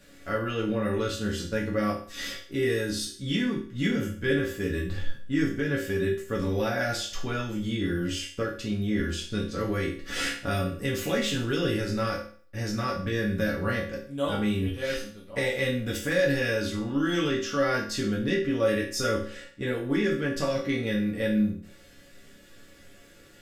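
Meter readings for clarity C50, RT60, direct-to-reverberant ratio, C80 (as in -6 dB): 6.5 dB, 0.45 s, -5.0 dB, 11.5 dB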